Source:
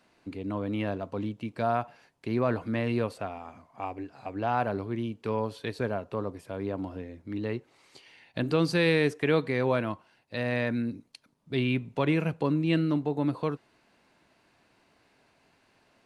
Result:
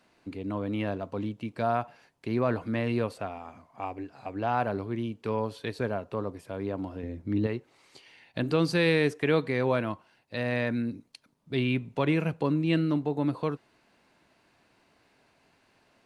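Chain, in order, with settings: 7.03–7.47 s: bass shelf 420 Hz +9 dB

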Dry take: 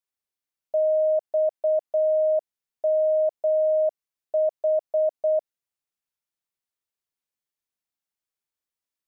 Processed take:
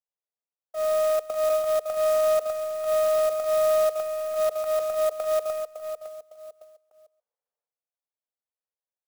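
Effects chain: partial rectifier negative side -12 dB; steep high-pass 440 Hz 96 dB/octave; on a send: feedback delay 557 ms, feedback 34%, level -12 dB; on the sum: level-controlled noise filter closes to 650 Hz, open at -22.5 dBFS; in parallel at -3 dB: hard clipper -34 dBFS, distortion -5 dB; on the sum: transient shaper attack -11 dB, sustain +10 dB; delay 135 ms -18.5 dB; sampling jitter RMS 0.031 ms

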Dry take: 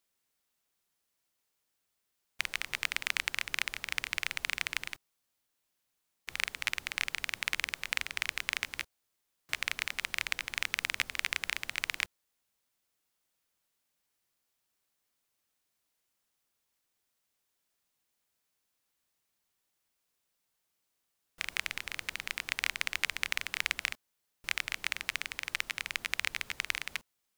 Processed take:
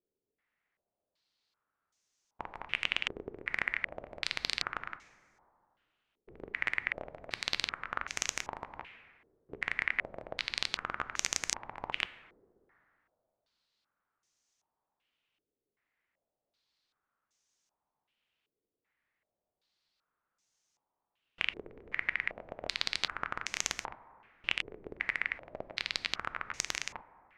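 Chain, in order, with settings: integer overflow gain 14 dB; plate-style reverb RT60 2.5 s, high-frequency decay 0.3×, DRR 13 dB; step-sequenced low-pass 2.6 Hz 420–6300 Hz; trim -1.5 dB

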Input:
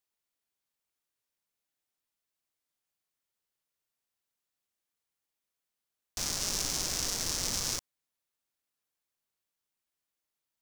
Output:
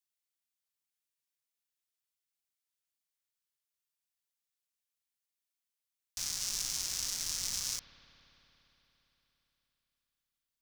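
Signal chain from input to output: amplifier tone stack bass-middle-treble 5-5-5; on a send: reverberation RT60 4.1 s, pre-delay 57 ms, DRR 11 dB; on the sum: trim +3.5 dB

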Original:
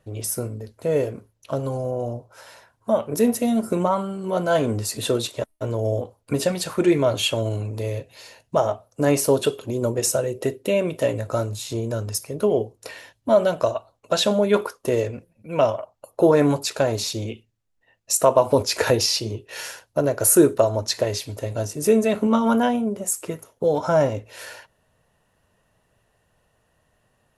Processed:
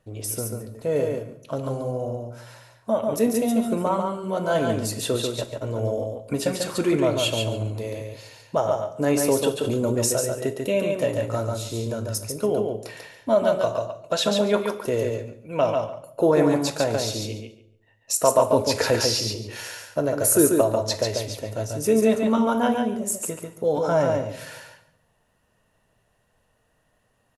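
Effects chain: feedback delay 142 ms, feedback 16%, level -4 dB; on a send at -11.5 dB: reverberation RT60 0.75 s, pre-delay 3 ms; 9.61–10.13 s: on the sum: level flattener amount 70%; trim -3 dB

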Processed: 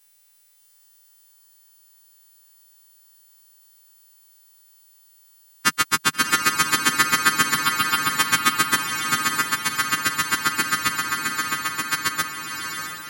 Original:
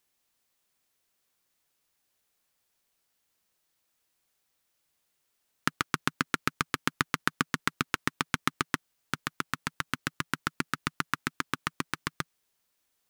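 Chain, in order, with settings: partials quantised in pitch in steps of 2 st; 7.54–8.12 s: static phaser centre 1.9 kHz, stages 6; 10.93–11.88 s: compression, threshold -30 dBFS, peak gain reduction 7.5 dB; echo that smears into a reverb 653 ms, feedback 45%, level -5 dB; trim +7 dB

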